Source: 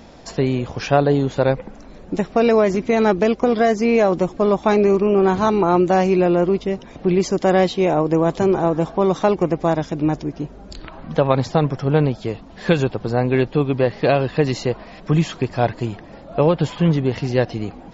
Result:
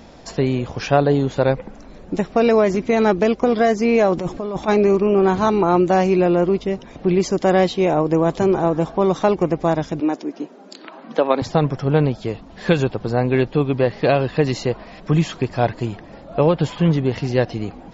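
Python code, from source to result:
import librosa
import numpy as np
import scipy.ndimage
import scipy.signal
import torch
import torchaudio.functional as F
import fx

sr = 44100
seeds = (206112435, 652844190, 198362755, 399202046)

y = fx.over_compress(x, sr, threshold_db=-23.0, ratio=-1.0, at=(4.17, 4.67), fade=0.02)
y = fx.steep_highpass(y, sr, hz=220.0, slope=36, at=(10.0, 11.42))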